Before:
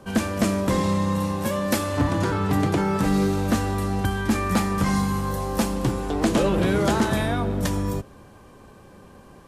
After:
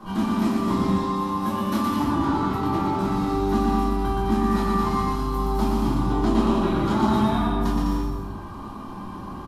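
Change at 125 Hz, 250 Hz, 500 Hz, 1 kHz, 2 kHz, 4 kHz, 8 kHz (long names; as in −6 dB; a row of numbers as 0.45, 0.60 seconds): −3.0, +1.0, −2.0, +3.0, −6.0, −3.5, −10.0 decibels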